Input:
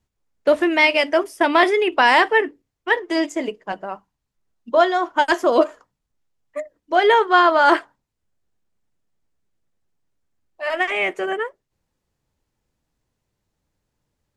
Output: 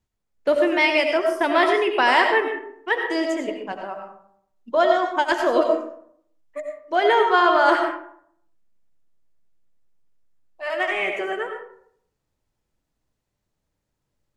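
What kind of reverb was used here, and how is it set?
comb and all-pass reverb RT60 0.67 s, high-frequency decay 0.5×, pre-delay 50 ms, DRR 3.5 dB
level −4 dB

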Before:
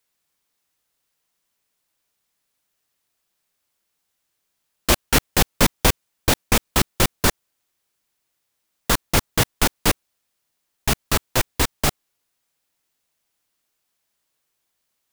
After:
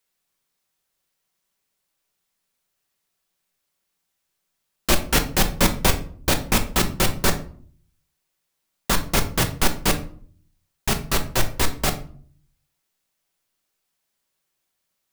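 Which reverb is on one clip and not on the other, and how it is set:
rectangular room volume 460 cubic metres, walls furnished, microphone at 1.1 metres
level −2.5 dB

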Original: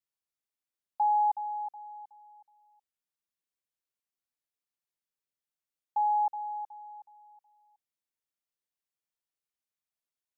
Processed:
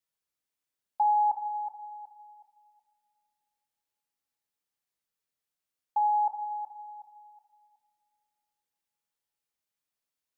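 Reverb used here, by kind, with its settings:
coupled-rooms reverb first 0.72 s, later 3 s, from −21 dB, DRR 6.5 dB
level +2.5 dB

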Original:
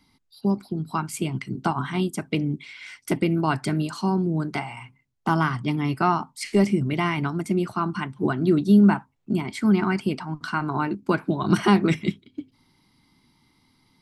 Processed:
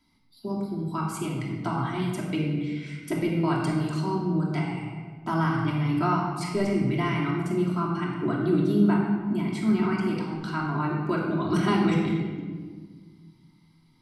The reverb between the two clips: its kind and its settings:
rectangular room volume 1,700 cubic metres, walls mixed, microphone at 2.9 metres
level −8.5 dB

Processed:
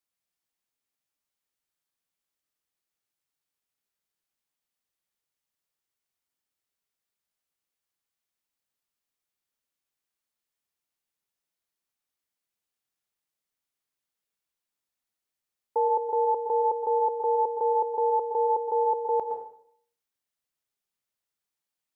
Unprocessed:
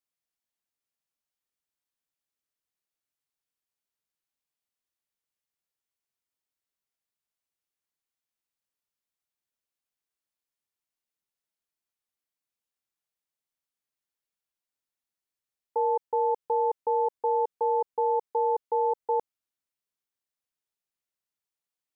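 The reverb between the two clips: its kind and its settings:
dense smooth reverb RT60 0.63 s, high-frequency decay 0.95×, pre-delay 100 ms, DRR 5 dB
level +1.5 dB

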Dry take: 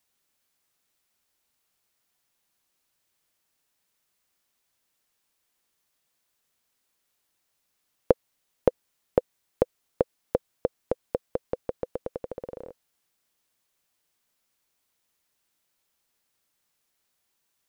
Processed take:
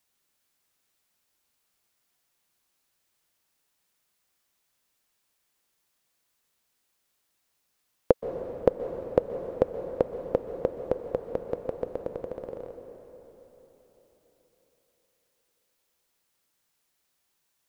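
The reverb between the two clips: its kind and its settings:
dense smooth reverb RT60 4.2 s, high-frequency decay 0.8×, pre-delay 115 ms, DRR 7 dB

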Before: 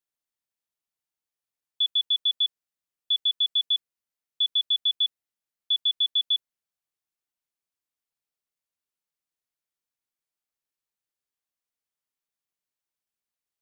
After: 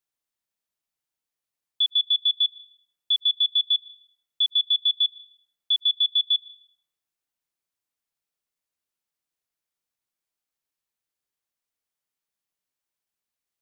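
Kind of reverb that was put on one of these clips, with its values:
comb and all-pass reverb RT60 0.88 s, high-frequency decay 0.6×, pre-delay 95 ms, DRR 18 dB
level +2 dB

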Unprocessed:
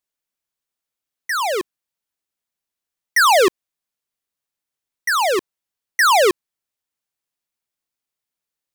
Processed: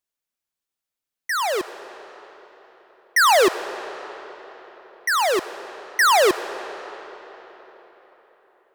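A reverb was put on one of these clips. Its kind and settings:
comb and all-pass reverb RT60 4.4 s, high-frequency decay 0.75×, pre-delay 30 ms, DRR 12.5 dB
level −2 dB

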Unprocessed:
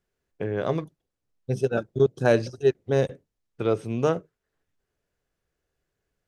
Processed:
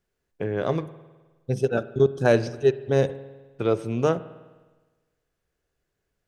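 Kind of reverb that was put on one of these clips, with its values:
spring reverb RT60 1.3 s, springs 51 ms, chirp 30 ms, DRR 15.5 dB
level +1 dB

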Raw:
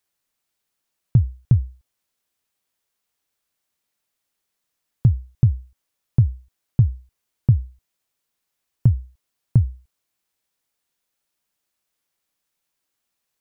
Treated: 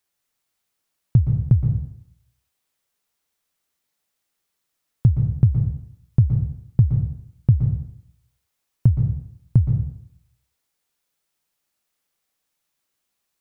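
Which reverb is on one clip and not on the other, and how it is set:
dense smooth reverb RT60 0.71 s, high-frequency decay 0.95×, pre-delay 110 ms, DRR 4 dB

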